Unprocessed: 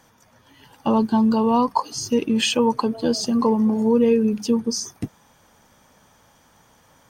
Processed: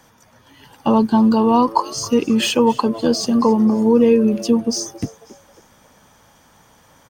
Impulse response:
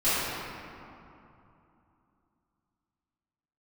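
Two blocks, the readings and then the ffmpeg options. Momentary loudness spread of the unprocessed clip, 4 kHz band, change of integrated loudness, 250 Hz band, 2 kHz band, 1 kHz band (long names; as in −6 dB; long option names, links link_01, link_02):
9 LU, +2.0 dB, +4.0 dB, +4.0 dB, +2.5 dB, +4.0 dB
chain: -filter_complex "[0:a]acrossover=split=410|1700[link_01][link_02][link_03];[link_03]asoftclip=type=tanh:threshold=-19.5dB[link_04];[link_01][link_02][link_04]amix=inputs=3:normalize=0,asplit=4[link_05][link_06][link_07][link_08];[link_06]adelay=271,afreqshift=110,volume=-19.5dB[link_09];[link_07]adelay=542,afreqshift=220,volume=-27.5dB[link_10];[link_08]adelay=813,afreqshift=330,volume=-35.4dB[link_11];[link_05][link_09][link_10][link_11]amix=inputs=4:normalize=0,volume=4dB"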